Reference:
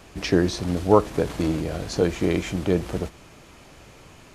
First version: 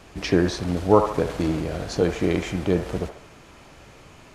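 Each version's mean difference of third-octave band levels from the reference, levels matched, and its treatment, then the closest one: 1.5 dB: treble shelf 9.8 kHz -6 dB; feedback echo behind a band-pass 71 ms, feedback 45%, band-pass 1.1 kHz, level -5 dB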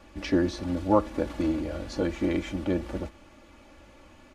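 3.5 dB: treble shelf 4.6 kHz -10.5 dB; comb 3.5 ms, depth 83%; trim -6 dB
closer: first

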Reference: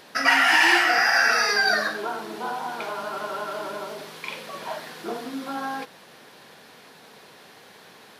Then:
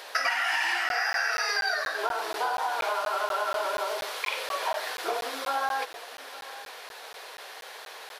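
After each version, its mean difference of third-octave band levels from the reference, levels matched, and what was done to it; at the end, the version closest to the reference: 9.0 dB: high-pass 490 Hz 24 dB/octave; compression 10:1, threshold -31 dBFS, peak gain reduction 17.5 dB; delay 858 ms -18 dB; crackling interface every 0.24 s, samples 512, zero, from 0.89 s; trim +6.5 dB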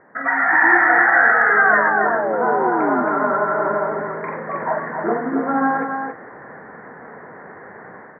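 12.0 dB: steep low-pass 2 kHz 96 dB/octave; level rider gain up to 12 dB; painted sound fall, 1.44–3.04 s, 240–1500 Hz -22 dBFS; delay 275 ms -5.5 dB; trim -1 dB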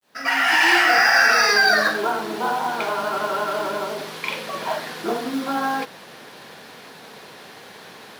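3.5 dB: fade-in on the opening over 0.96 s; treble shelf 8 kHz -3.5 dB; in parallel at +2 dB: peak limiter -16.5 dBFS, peak gain reduction 8.5 dB; on the sum: companded quantiser 6-bit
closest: third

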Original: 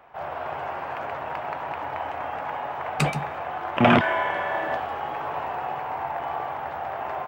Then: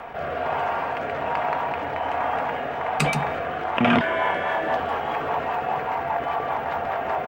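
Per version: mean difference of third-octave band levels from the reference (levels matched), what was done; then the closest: 3.0 dB: comb 4.3 ms, depth 34%; rotary cabinet horn 1.2 Hz, later 5 Hz, at 3.69 s; level flattener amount 50%; trim -1 dB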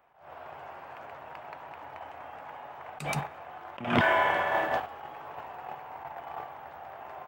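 5.0 dB: gate -27 dBFS, range -13 dB; treble shelf 6 kHz +9 dB; attacks held to a fixed rise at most 110 dB/s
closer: first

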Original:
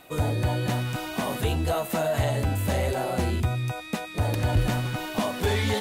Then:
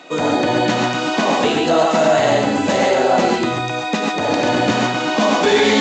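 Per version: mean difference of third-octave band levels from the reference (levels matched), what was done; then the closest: 8.0 dB: high-pass 200 Hz 24 dB/octave; gated-style reverb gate 160 ms rising, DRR -0.5 dB; loudness maximiser +13.5 dB; trim -3 dB; µ-law 128 kbps 16 kHz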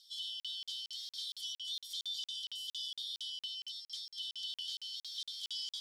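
23.5 dB: four frequency bands reordered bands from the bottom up 3412; in parallel at +1.5 dB: peak limiter -23 dBFS, peak gain reduction 11.5 dB; on the sum: ladder band-pass 5.9 kHz, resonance 35%; crackling interface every 0.23 s, samples 2048, zero, from 0.40 s; trim -5.5 dB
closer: first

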